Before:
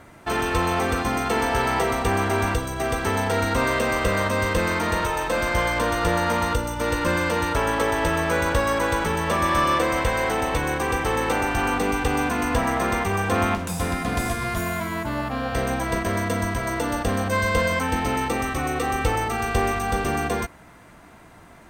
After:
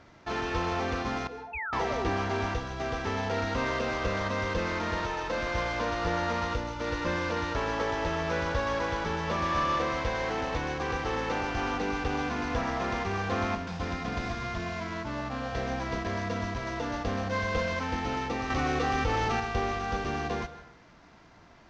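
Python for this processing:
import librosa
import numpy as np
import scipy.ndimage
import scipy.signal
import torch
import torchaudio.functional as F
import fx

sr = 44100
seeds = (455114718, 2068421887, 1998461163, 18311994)

y = fx.cvsd(x, sr, bps=32000)
y = fx.spec_topn(y, sr, count=1, at=(1.27, 1.73))
y = fx.rev_plate(y, sr, seeds[0], rt60_s=0.63, hf_ratio=0.7, predelay_ms=120, drr_db=13.0)
y = fx.spec_paint(y, sr, seeds[1], shape='fall', start_s=1.53, length_s=0.6, low_hz=260.0, high_hz=2700.0, level_db=-28.0)
y = fx.env_flatten(y, sr, amount_pct=70, at=(18.5, 19.4))
y = F.gain(torch.from_numpy(y), -7.5).numpy()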